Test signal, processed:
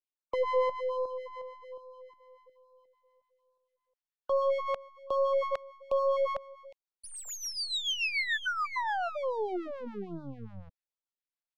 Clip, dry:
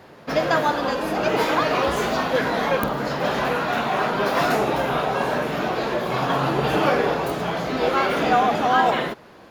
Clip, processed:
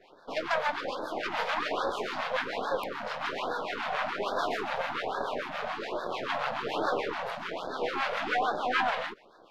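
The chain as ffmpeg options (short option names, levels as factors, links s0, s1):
-filter_complex "[0:a]aeval=exprs='max(val(0),0)':c=same,aresample=32000,aresample=44100,acrossover=split=820[s0][s1];[s0]aeval=exprs='val(0)*(1-0.7/2+0.7/2*cos(2*PI*6.9*n/s))':c=same[s2];[s1]aeval=exprs='val(0)*(1-0.7/2-0.7/2*cos(2*PI*6.9*n/s))':c=same[s3];[s2][s3]amix=inputs=2:normalize=0,acrossover=split=310 4900:gain=0.141 1 0.158[s4][s5][s6];[s4][s5][s6]amix=inputs=3:normalize=0,afftfilt=real='re*(1-between(b*sr/1024,300*pow(2500/300,0.5+0.5*sin(2*PI*1.2*pts/sr))/1.41,300*pow(2500/300,0.5+0.5*sin(2*PI*1.2*pts/sr))*1.41))':imag='im*(1-between(b*sr/1024,300*pow(2500/300,0.5+0.5*sin(2*PI*1.2*pts/sr))/1.41,300*pow(2500/300,0.5+0.5*sin(2*PI*1.2*pts/sr))*1.41))':win_size=1024:overlap=0.75"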